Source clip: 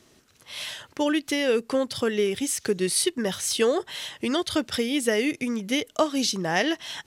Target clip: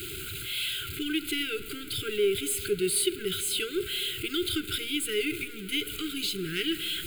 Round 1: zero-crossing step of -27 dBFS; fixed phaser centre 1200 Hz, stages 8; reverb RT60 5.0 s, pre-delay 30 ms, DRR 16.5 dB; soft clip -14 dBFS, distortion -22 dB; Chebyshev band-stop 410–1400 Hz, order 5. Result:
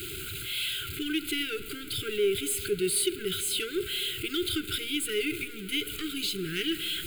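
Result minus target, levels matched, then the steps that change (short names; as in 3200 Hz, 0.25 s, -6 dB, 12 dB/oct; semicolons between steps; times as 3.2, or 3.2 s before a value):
soft clip: distortion +21 dB
change: soft clip -2.5 dBFS, distortion -43 dB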